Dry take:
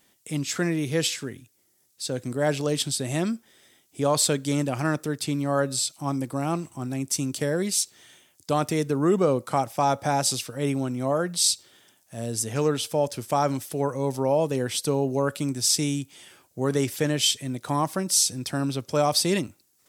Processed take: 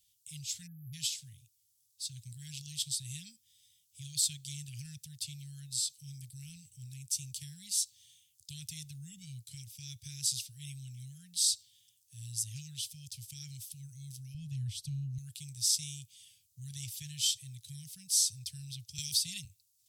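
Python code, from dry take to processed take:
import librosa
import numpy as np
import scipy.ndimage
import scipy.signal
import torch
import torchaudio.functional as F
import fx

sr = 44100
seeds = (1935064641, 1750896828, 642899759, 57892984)

y = fx.spec_erase(x, sr, start_s=0.67, length_s=0.27, low_hz=1700.0, high_hz=11000.0)
y = fx.tilt_eq(y, sr, slope=-3.0, at=(14.34, 15.18))
y = fx.band_squash(y, sr, depth_pct=70, at=(18.98, 19.45))
y = scipy.signal.sosfilt(scipy.signal.cheby2(4, 60, [310.0, 1200.0], 'bandstop', fs=sr, output='sos'), y)
y = y * librosa.db_to_amplitude(-6.5)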